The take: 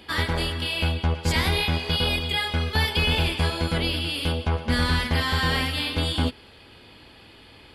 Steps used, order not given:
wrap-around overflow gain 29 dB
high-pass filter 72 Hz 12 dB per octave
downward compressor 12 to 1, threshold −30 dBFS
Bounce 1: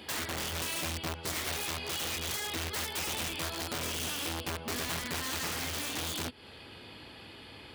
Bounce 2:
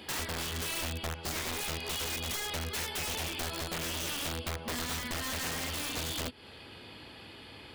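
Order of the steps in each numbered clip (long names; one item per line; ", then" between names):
downward compressor, then wrap-around overflow, then high-pass filter
downward compressor, then high-pass filter, then wrap-around overflow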